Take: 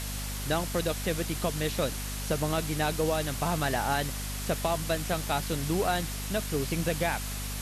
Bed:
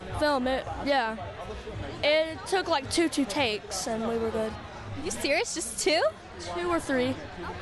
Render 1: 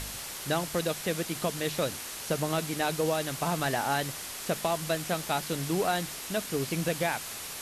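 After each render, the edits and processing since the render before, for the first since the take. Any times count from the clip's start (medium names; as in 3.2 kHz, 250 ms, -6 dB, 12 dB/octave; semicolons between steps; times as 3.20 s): de-hum 50 Hz, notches 5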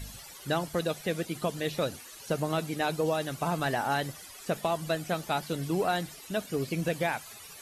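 noise reduction 15 dB, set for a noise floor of -40 dBFS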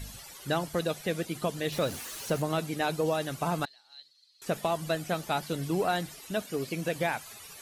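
1.72–2.42 s: jump at every zero crossing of -39 dBFS; 3.65–4.42 s: band-pass filter 4.2 kHz, Q 18; 6.42–6.96 s: bass shelf 130 Hz -10.5 dB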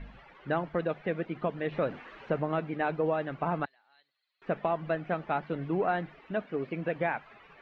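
low-pass 2.3 kHz 24 dB/octave; peaking EQ 91 Hz -14.5 dB 0.62 oct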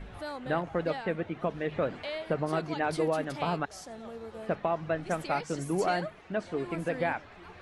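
add bed -13.5 dB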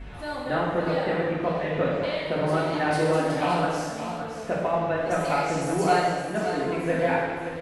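on a send: delay 570 ms -9 dB; on the sum: gated-style reverb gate 430 ms falling, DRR -5.5 dB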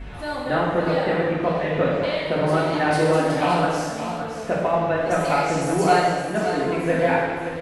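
trim +4 dB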